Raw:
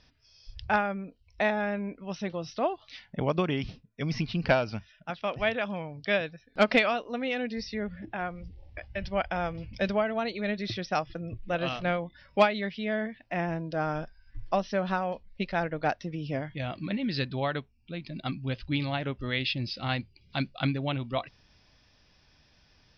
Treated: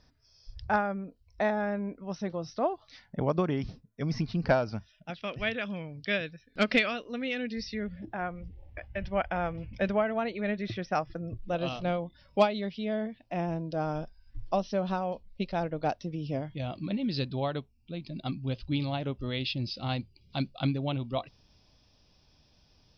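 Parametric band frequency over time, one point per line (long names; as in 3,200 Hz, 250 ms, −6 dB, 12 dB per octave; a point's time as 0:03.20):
parametric band −11.5 dB 1 octave
0:04.77 2,800 Hz
0:05.21 830 Hz
0:07.84 830 Hz
0:08.27 4,700 Hz
0:10.75 4,700 Hz
0:11.59 1,800 Hz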